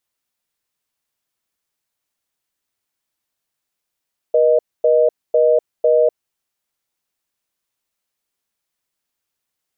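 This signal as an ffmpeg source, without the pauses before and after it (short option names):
-f lavfi -i "aevalsrc='0.224*(sin(2*PI*480*t)+sin(2*PI*620*t))*clip(min(mod(t,0.5),0.25-mod(t,0.5))/0.005,0,1)':d=1.81:s=44100"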